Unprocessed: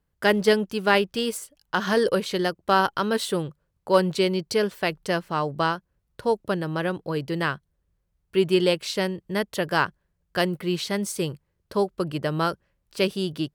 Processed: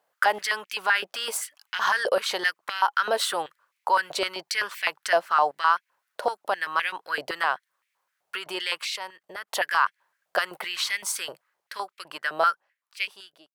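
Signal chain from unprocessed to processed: ending faded out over 2.93 s; in parallel at +2 dB: compressor 6:1, threshold -31 dBFS, peak gain reduction 17 dB; on the sum: limiter -15.5 dBFS, peak gain reduction 11.5 dB; 8.84–9.48 level quantiser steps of 17 dB; stepped high-pass 7.8 Hz 670–2200 Hz

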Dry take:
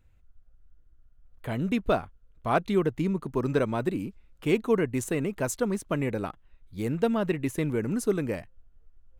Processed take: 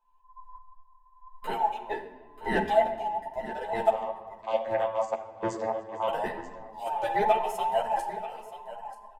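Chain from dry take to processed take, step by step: band inversion scrambler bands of 1000 Hz; notches 50/100/150/200 Hz; comb 4.6 ms, depth 59%; AGC gain up to 16.5 dB; 3.9–6.08 vocoder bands 16, saw 111 Hz; random-step tremolo 3.5 Hz, depth 95%; echo 0.935 s -14 dB; reverb RT60 1.5 s, pre-delay 6 ms, DRR 6.5 dB; ensemble effect; gain -7.5 dB

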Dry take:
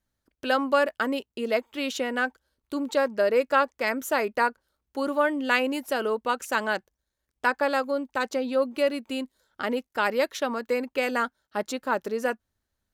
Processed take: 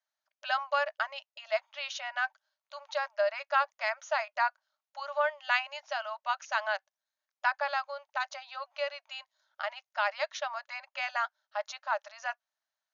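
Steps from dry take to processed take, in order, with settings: brick-wall FIR band-pass 570–6900 Hz; gain -4 dB

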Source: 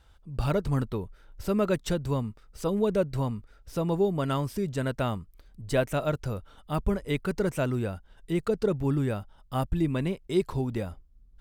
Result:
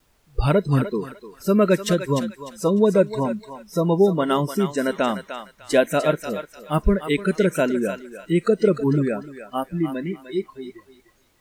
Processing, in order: ending faded out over 2.66 s; added noise pink -48 dBFS; gate with hold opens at -43 dBFS; spectral noise reduction 24 dB; on a send: thinning echo 0.3 s, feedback 30%, high-pass 900 Hz, level -7 dB; on the sum: gain +8.5 dB

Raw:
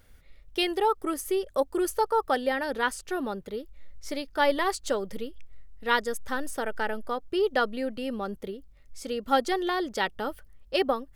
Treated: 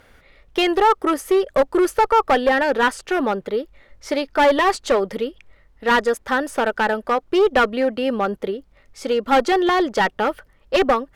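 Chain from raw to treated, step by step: overdrive pedal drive 17 dB, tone 1300 Hz, clips at -9 dBFS; one-sided clip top -20 dBFS; gain +6.5 dB

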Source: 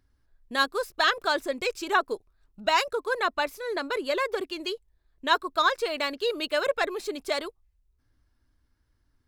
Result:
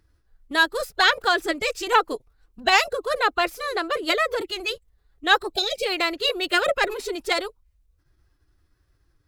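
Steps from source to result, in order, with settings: spectral gain 5.53–5.86, 720–1900 Hz -27 dB; formant-preserving pitch shift +3 st; gain +5.5 dB

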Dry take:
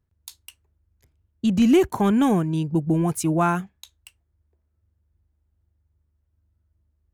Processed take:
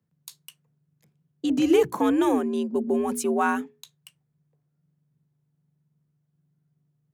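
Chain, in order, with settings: frequency shift +73 Hz; notches 60/120/180/240/300/360/420 Hz; gain -2 dB

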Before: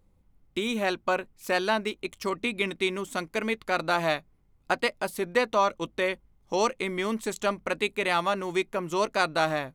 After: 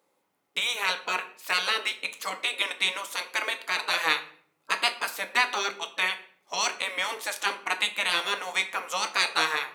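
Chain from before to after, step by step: spectral gate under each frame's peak -10 dB weak; HPF 560 Hz 12 dB/oct; shoebox room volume 75 m³, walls mixed, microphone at 0.3 m; gain +7 dB

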